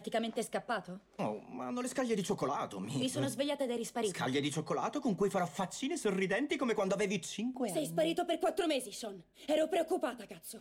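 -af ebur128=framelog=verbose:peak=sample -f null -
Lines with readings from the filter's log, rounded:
Integrated loudness:
  I:         -35.2 LUFS
  Threshold: -45.4 LUFS
Loudness range:
  LRA:         2.5 LU
  Threshold: -55.1 LUFS
  LRA low:   -36.7 LUFS
  LRA high:  -34.2 LUFS
Sample peak:
  Peak:      -23.0 dBFS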